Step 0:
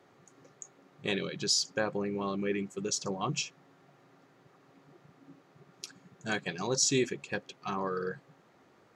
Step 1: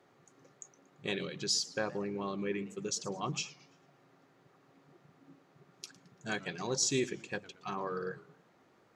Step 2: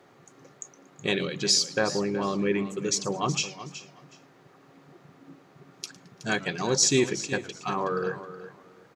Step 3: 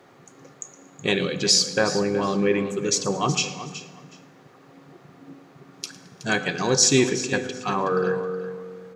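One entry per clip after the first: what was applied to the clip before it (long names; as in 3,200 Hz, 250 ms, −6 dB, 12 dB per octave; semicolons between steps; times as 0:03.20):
hum removal 95.89 Hz, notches 3; feedback echo with a swinging delay time 113 ms, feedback 39%, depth 206 cents, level −19 dB; level −3.5 dB
repeating echo 371 ms, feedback 20%, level −13.5 dB; level +9 dB
convolution reverb RT60 1.6 s, pre-delay 3 ms, DRR 11 dB; level +4 dB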